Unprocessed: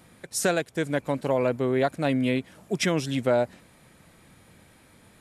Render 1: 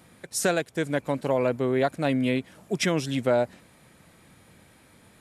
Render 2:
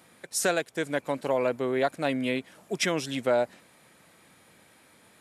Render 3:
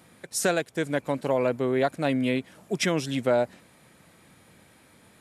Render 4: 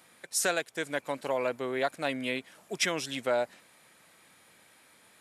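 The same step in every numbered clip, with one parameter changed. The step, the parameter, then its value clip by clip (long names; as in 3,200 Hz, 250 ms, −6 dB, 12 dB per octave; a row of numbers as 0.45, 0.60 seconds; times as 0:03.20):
high-pass filter, corner frequency: 44, 370, 120, 940 Hertz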